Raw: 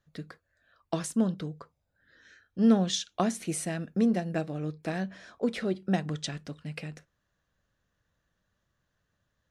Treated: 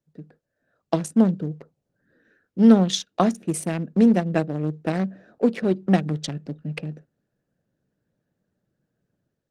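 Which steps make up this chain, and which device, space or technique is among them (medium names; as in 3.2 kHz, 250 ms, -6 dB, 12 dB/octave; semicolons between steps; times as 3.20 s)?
local Wiener filter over 41 samples; 5.00–5.63 s: high-pass 53 Hz 6 dB/octave; video call (high-pass 130 Hz 24 dB/octave; level rider gain up to 9.5 dB; Opus 20 kbps 48 kHz)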